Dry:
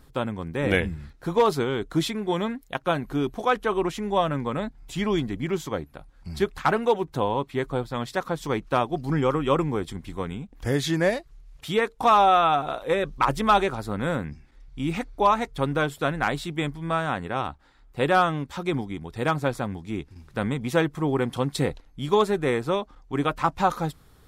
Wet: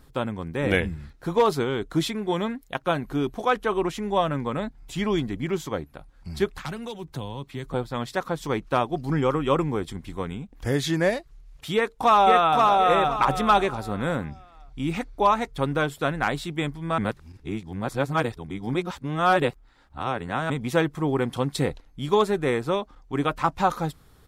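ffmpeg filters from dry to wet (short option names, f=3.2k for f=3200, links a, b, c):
-filter_complex "[0:a]asettb=1/sr,asplit=3[a][b][c];[a]atrim=end=6.604[d];[b]atrim=start=6.6:end=7.74,asetpts=PTS-STARTPTS,afade=t=in:d=0.004:c=qsin,afade=t=out:st=1.136:d=0.004:c=qsin,acrossover=split=190|3000[e][f][g];[f]acompressor=threshold=-37dB:ratio=4:attack=3.2:release=140:knee=2.83:detection=peak[h];[e][h][g]amix=inputs=3:normalize=0[i];[c]atrim=start=7.736[j];[d][i]acrossfade=d=0.004:c1=hsin:c2=qsin[k];[k][j]acrossfade=d=0.004:c1=qsin:c2=hsin,asplit=2[l][m];[m]afade=t=in:st=11.74:d=0.01,afade=t=out:st=12.64:d=0.01,aecho=0:1:520|1040|1560|2080:0.794328|0.238298|0.0714895|0.0214469[n];[l][n]amix=inputs=2:normalize=0,asplit=3[o][p][q];[o]atrim=end=16.982[r];[p]atrim=start=16.978:end=20.502,asetpts=PTS-STARTPTS,areverse[s];[q]atrim=start=20.498[t];[r][s]acrossfade=d=0.004:c1=hsin:c2=hsin[u];[u][t]acrossfade=d=0.004:c1=hsin:c2=hsin"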